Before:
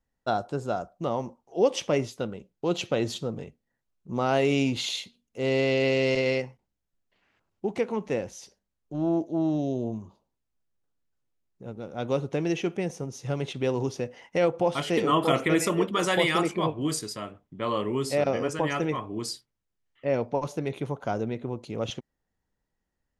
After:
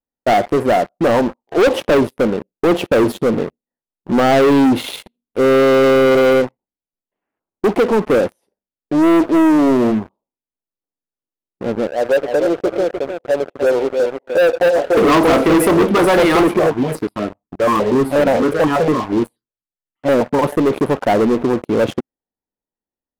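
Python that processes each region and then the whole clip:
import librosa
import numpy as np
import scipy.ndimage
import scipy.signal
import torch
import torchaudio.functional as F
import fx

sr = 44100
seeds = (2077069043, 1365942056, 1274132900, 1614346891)

y = fx.chain(x, sr, fx.bandpass_q(hz=580.0, q=3.4),
    fx.echo_feedback(ms=301, feedback_pct=17, wet_db=-9.0), at=(11.87, 14.97))
y = fx.chain(y, sr, fx.high_shelf(hz=6600.0, db=-12.0),
    fx.phaser_held(hz=8.3, low_hz=970.0, high_hz=3600.0), at=(16.59, 20.39))
y = fx.curve_eq(y, sr, hz=(130.0, 260.0, 890.0, 3500.0, 6800.0, 9900.0), db=(0, 12, 10, -5, -18, 6))
y = fx.leveller(y, sr, passes=5)
y = y * librosa.db_to_amplitude(-8.0)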